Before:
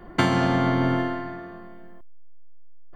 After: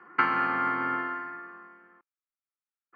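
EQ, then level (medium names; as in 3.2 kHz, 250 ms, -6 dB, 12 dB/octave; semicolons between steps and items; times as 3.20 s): distance through air 110 m; cabinet simulation 460–4200 Hz, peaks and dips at 520 Hz +5 dB, 820 Hz +4 dB, 1.3 kHz +10 dB, 2.5 kHz +6 dB, 3.7 kHz +8 dB; static phaser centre 1.5 kHz, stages 4; -2.0 dB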